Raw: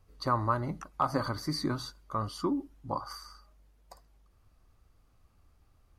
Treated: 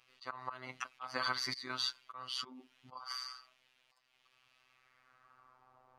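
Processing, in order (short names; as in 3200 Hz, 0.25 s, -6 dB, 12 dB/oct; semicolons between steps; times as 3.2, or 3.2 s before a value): band-pass sweep 2800 Hz -> 850 Hz, 4.6–5.8; auto swell 0.317 s; robotiser 128 Hz; gain +18 dB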